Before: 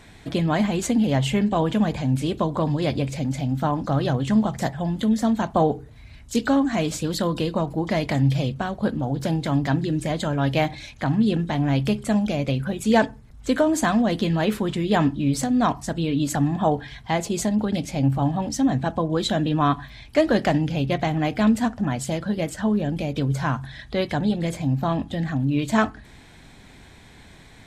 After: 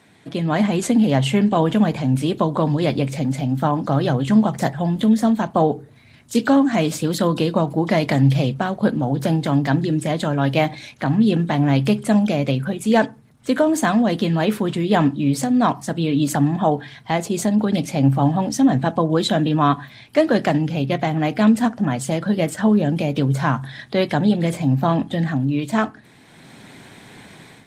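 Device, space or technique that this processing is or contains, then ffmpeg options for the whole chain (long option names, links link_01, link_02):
video call: -af "highpass=frequency=120:width=0.5412,highpass=frequency=120:width=1.3066,dynaudnorm=framelen=320:gausssize=3:maxgain=11.5dB,volume=-3dB" -ar 48000 -c:a libopus -b:a 32k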